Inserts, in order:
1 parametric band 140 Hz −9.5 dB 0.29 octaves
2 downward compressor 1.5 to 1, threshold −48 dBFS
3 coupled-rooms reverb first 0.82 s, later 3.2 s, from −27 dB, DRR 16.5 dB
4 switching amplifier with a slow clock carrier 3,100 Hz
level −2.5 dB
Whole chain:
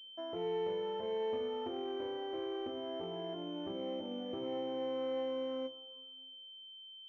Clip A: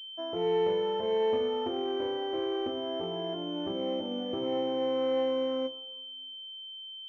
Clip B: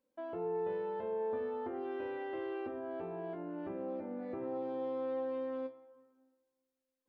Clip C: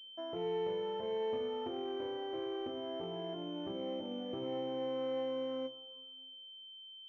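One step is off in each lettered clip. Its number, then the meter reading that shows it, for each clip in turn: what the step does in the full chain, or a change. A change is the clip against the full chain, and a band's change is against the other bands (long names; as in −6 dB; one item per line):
2, average gain reduction 7.5 dB
4, 2 kHz band +3.5 dB
1, 125 Hz band +2.5 dB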